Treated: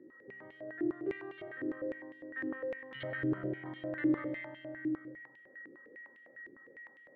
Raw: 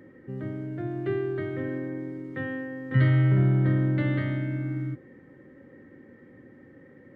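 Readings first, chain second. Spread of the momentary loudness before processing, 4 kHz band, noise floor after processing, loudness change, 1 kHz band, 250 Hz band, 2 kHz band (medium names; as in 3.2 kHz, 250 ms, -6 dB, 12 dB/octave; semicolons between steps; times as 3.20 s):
15 LU, no reading, -60 dBFS, -11.0 dB, -8.0 dB, -7.0 dB, -5.5 dB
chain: whistle 1.9 kHz -49 dBFS; algorithmic reverb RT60 0.95 s, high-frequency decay 0.95×, pre-delay 60 ms, DRR 2 dB; step-sequenced band-pass 9.9 Hz 350–3100 Hz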